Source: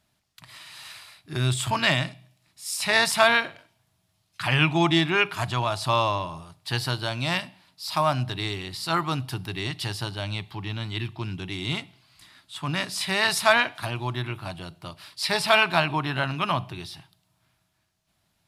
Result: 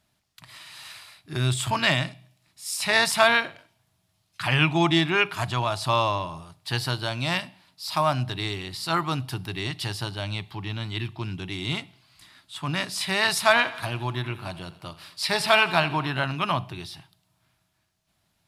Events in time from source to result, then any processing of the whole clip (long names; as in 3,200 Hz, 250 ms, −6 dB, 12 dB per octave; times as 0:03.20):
0:13.41–0:16.08: repeating echo 85 ms, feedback 59%, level −17 dB